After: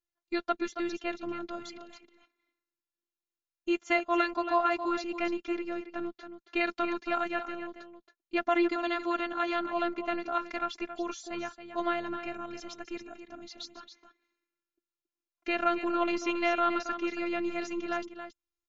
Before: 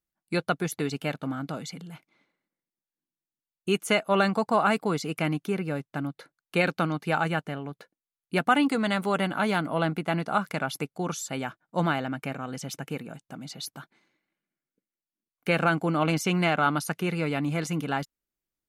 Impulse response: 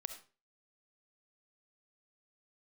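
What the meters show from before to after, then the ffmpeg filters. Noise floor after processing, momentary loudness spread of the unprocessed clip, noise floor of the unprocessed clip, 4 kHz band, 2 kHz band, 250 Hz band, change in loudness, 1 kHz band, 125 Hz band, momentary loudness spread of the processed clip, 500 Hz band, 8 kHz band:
under -85 dBFS, 13 LU, under -85 dBFS, -6.5 dB, -5.0 dB, -4.5 dB, -4.0 dB, -3.0 dB, under -25 dB, 16 LU, -3.5 dB, -11.5 dB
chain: -filter_complex "[0:a]acrossover=split=5900[s0][s1];[s1]acompressor=threshold=0.00224:ratio=4:attack=1:release=60[s2];[s0][s2]amix=inputs=2:normalize=0,afftfilt=real='hypot(re,im)*cos(PI*b)':imag='0':win_size=512:overlap=0.75,asplit=2[s3][s4];[s4]aecho=0:1:275:0.316[s5];[s3][s5]amix=inputs=2:normalize=0" -ar 16000 -c:a libmp3lame -b:a 80k

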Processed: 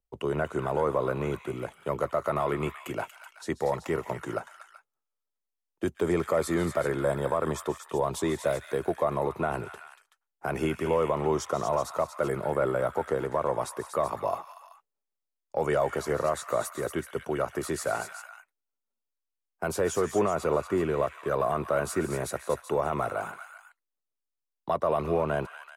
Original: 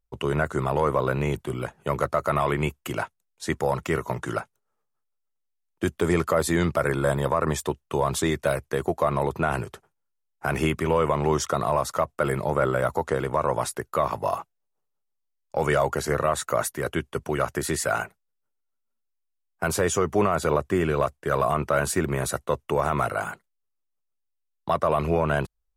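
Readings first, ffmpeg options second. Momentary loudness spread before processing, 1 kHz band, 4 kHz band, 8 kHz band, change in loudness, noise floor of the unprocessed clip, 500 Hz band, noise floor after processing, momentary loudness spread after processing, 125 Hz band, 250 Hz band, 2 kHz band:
8 LU, -5.0 dB, -7.0 dB, -7.0 dB, -4.0 dB, -78 dBFS, -2.5 dB, under -85 dBFS, 9 LU, -7.5 dB, -4.0 dB, -6.5 dB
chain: -filter_complex "[0:a]acrossover=split=250|900[s0][s1][s2];[s1]acontrast=83[s3];[s2]aecho=1:1:133|143|176|236|380:0.133|0.133|0.188|0.422|0.299[s4];[s0][s3][s4]amix=inputs=3:normalize=0,volume=0.376"

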